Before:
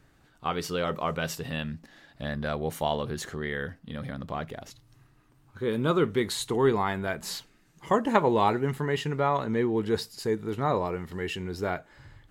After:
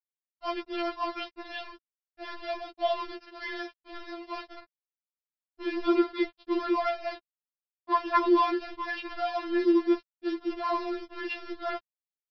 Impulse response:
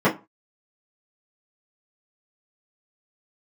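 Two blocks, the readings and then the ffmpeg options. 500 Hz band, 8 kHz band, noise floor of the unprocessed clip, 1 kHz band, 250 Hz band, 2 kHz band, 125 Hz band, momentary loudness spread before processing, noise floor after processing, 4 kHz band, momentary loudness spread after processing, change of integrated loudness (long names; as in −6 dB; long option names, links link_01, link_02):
−3.5 dB, below −25 dB, −62 dBFS, −1.0 dB, +1.0 dB, −2.5 dB, below −35 dB, 12 LU, below −85 dBFS, −3.5 dB, 16 LU, −1.5 dB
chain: -af "aresample=8000,aresample=44100,adynamicsmooth=sensitivity=7:basefreq=960,lowshelf=frequency=120:gain=-2.5,aresample=11025,aeval=exprs='val(0)*gte(abs(val(0)),0.02)':channel_layout=same,aresample=44100,afftfilt=real='re*4*eq(mod(b,16),0)':imag='im*4*eq(mod(b,16),0)':win_size=2048:overlap=0.75,volume=1.5dB"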